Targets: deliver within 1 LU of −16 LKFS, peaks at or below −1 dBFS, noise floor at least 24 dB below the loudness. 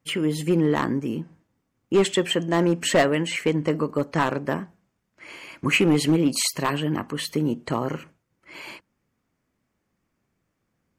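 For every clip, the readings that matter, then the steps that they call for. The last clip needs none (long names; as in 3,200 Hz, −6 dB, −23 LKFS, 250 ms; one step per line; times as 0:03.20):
share of clipped samples 0.5%; peaks flattened at −12.5 dBFS; integrated loudness −23.5 LKFS; sample peak −12.5 dBFS; target loudness −16.0 LKFS
→ clipped peaks rebuilt −12.5 dBFS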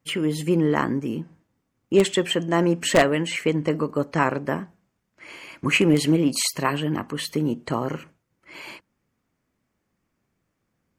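share of clipped samples 0.0%; integrated loudness −23.0 LKFS; sample peak −3.5 dBFS; target loudness −16.0 LKFS
→ level +7 dB
brickwall limiter −1 dBFS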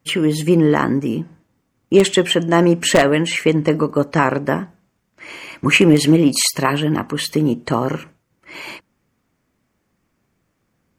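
integrated loudness −16.5 LKFS; sample peak −1.0 dBFS; background noise floor −70 dBFS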